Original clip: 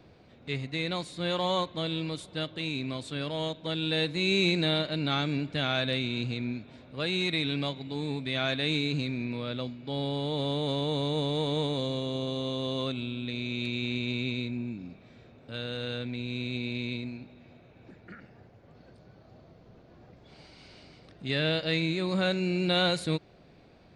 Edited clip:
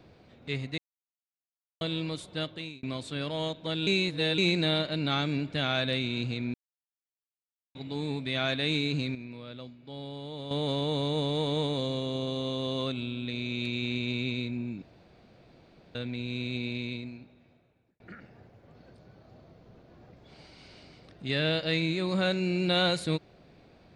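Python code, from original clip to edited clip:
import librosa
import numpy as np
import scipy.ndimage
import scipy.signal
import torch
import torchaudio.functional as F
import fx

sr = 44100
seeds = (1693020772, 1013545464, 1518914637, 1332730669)

y = fx.edit(x, sr, fx.silence(start_s=0.78, length_s=1.03),
    fx.fade_out_span(start_s=2.47, length_s=0.36),
    fx.reverse_span(start_s=3.87, length_s=0.51),
    fx.silence(start_s=6.54, length_s=1.21),
    fx.clip_gain(start_s=9.15, length_s=1.36, db=-9.0),
    fx.room_tone_fill(start_s=14.82, length_s=1.13),
    fx.fade_out_span(start_s=16.65, length_s=1.35), tone=tone)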